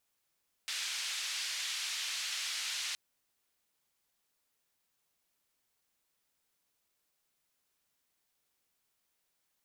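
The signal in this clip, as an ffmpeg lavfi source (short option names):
-f lavfi -i "anoisesrc=c=white:d=2.27:r=44100:seed=1,highpass=f=2200,lowpass=f=5100,volume=-24.2dB"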